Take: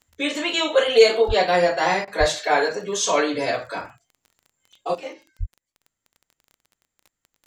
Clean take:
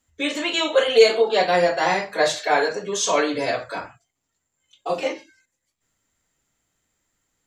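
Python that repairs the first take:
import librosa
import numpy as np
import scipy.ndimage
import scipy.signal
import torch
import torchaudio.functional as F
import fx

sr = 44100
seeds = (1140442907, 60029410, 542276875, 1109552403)

y = fx.fix_declick_ar(x, sr, threshold=6.5)
y = fx.highpass(y, sr, hz=140.0, slope=24, at=(1.27, 1.39), fade=0.02)
y = fx.highpass(y, sr, hz=140.0, slope=24, at=(2.19, 2.31), fade=0.02)
y = fx.highpass(y, sr, hz=140.0, slope=24, at=(5.39, 5.51), fade=0.02)
y = fx.fix_interpolate(y, sr, at_s=(2.05,), length_ms=24.0)
y = fx.gain(y, sr, db=fx.steps((0.0, 0.0), (4.95, 9.5)))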